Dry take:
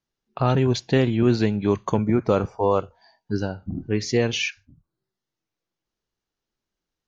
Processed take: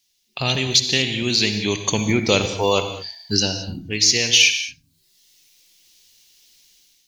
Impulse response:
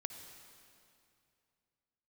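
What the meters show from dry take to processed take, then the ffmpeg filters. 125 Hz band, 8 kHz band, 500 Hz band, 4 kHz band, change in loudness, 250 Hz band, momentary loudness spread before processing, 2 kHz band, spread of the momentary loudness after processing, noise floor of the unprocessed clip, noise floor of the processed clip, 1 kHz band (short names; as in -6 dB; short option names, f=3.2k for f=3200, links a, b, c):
-3.0 dB, n/a, -1.5 dB, +16.0 dB, +4.5 dB, -2.0 dB, 8 LU, +10.0 dB, 15 LU, under -85 dBFS, -67 dBFS, -0.5 dB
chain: -filter_complex "[0:a]aexciter=amount=9.8:drive=6.9:freq=2.1k,dynaudnorm=f=180:g=5:m=12.5dB[a];[1:a]atrim=start_sample=2205,afade=t=out:st=0.28:d=0.01,atrim=end_sample=12789[b];[a][b]afir=irnorm=-1:irlink=0,volume=1.5dB"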